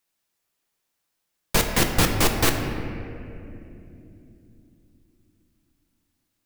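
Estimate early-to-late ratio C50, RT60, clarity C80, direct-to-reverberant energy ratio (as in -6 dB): 5.0 dB, 3.0 s, 6.0 dB, 3.0 dB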